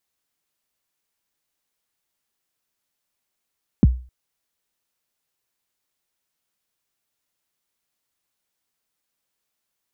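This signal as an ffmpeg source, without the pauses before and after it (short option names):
-f lavfi -i "aevalsrc='0.501*pow(10,-3*t/0.37)*sin(2*PI*(290*0.028/log(62/290)*(exp(log(62/290)*min(t,0.028)/0.028)-1)+62*max(t-0.028,0)))':d=0.26:s=44100"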